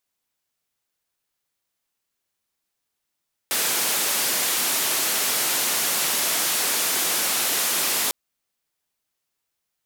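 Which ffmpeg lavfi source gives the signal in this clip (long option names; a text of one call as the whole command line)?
ffmpeg -f lavfi -i "anoisesrc=color=white:duration=4.6:sample_rate=44100:seed=1,highpass=frequency=220,lowpass=frequency=15000,volume=-16.4dB" out.wav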